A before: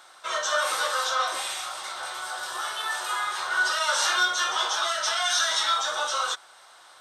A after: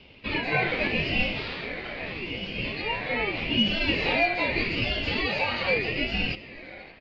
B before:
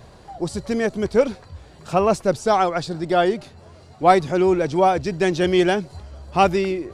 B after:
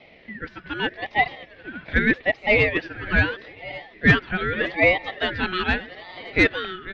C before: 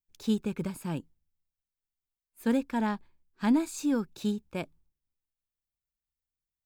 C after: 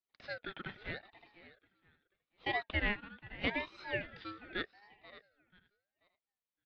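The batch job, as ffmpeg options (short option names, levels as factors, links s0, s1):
-filter_complex "[0:a]asplit=2[s0][s1];[s1]aecho=0:1:486|972|1458:0.112|0.0381|0.013[s2];[s0][s2]amix=inputs=2:normalize=0,highpass=f=530:t=q:w=0.5412,highpass=f=530:t=q:w=1.307,lowpass=f=2900:t=q:w=0.5176,lowpass=f=2900:t=q:w=0.7071,lowpass=f=2900:t=q:w=1.932,afreqshift=93,acontrast=73,asplit=2[s3][s4];[s4]aecho=0:1:566:0.126[s5];[s3][s5]amix=inputs=2:normalize=0,aeval=exprs='val(0)*sin(2*PI*1100*n/s+1100*0.25/0.81*sin(2*PI*0.81*n/s))':c=same,volume=0.75"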